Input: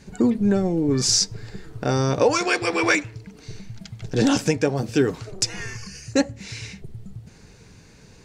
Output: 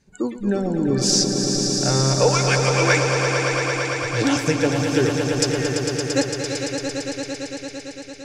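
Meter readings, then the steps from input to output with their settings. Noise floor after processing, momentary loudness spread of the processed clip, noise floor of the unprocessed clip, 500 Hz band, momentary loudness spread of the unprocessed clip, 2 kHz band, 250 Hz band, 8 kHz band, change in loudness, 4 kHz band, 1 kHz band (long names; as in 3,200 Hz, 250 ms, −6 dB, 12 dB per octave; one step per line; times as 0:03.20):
−39 dBFS, 12 LU, −49 dBFS, +3.0 dB, 20 LU, +4.0 dB, +0.5 dB, +4.0 dB, +1.5 dB, +4.0 dB, +3.5 dB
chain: noise reduction from a noise print of the clip's start 15 dB
echo that builds up and dies away 113 ms, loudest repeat 5, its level −8 dB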